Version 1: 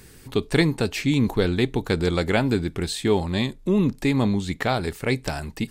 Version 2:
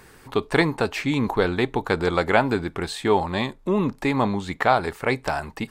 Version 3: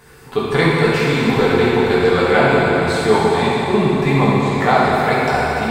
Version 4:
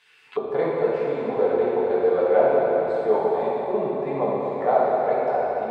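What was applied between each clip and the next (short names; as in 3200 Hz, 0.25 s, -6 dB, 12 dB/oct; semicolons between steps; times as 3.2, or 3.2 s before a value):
bell 1000 Hz +14.5 dB 2.2 oct; gain -5.5 dB
reverb RT60 4.0 s, pre-delay 3 ms, DRR -9 dB; gain -1.5 dB
auto-wah 570–3100 Hz, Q 3.7, down, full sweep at -17.5 dBFS; gain +1.5 dB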